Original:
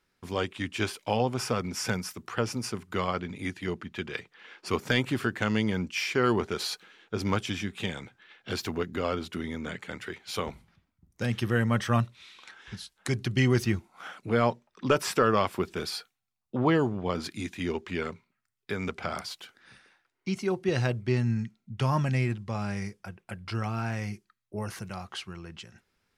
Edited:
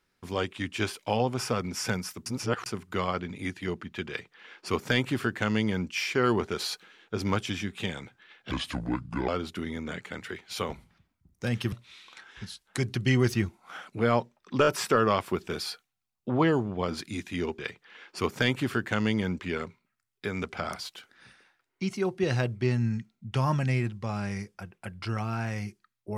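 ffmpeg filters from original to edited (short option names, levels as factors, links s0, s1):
-filter_complex "[0:a]asplit=10[s0][s1][s2][s3][s4][s5][s6][s7][s8][s9];[s0]atrim=end=2.262[s10];[s1]atrim=start=2.258:end=2.662,asetpts=PTS-STARTPTS,areverse[s11];[s2]atrim=start=2.658:end=8.514[s12];[s3]atrim=start=8.51:end=9.06,asetpts=PTS-STARTPTS,asetrate=31311,aresample=44100[s13];[s4]atrim=start=9.056:end=11.502[s14];[s5]atrim=start=12.028:end=14.952[s15];[s6]atrim=start=14.928:end=14.952[s16];[s7]atrim=start=14.928:end=17.852[s17];[s8]atrim=start=4.078:end=5.892[s18];[s9]atrim=start=17.848[s19];[s10][s11]acrossfade=d=0.004:c1=hsin:c2=hsin[s20];[s20][s12]acrossfade=d=0.004:c1=hsin:c2=hsin[s21];[s21][s13]acrossfade=d=0.004:c1=hsin:c2=hsin[s22];[s22][s14]acrossfade=d=0.004:c1=hsin:c2=hsin[s23];[s23][s15]acrossfade=d=0.004:c1=hsin:c2=hsin[s24];[s24][s16]acrossfade=d=0.004:c1=hsin:c2=hsin[s25];[s25][s17]acrossfade=d=0.004:c1=hsin:c2=hsin[s26];[s26][s18]acrossfade=d=0.004:c1=hsin:c2=hsin[s27];[s27][s19]acrossfade=d=0.004:c1=hsin:c2=hsin"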